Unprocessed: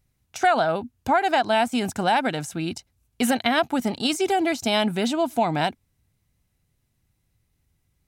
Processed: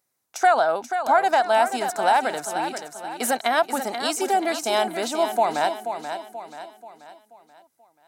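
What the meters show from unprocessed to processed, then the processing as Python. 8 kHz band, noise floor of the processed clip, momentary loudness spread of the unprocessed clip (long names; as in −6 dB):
+3.5 dB, −73 dBFS, 8 LU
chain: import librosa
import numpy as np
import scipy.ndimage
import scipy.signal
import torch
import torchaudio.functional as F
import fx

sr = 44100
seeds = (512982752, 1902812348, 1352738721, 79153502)

p1 = scipy.signal.sosfilt(scipy.signal.butter(2, 540.0, 'highpass', fs=sr, output='sos'), x)
p2 = fx.peak_eq(p1, sr, hz=2800.0, db=-9.5, octaves=1.2)
p3 = p2 + fx.echo_feedback(p2, sr, ms=483, feedback_pct=44, wet_db=-8.5, dry=0)
y = p3 * 10.0 ** (4.0 / 20.0)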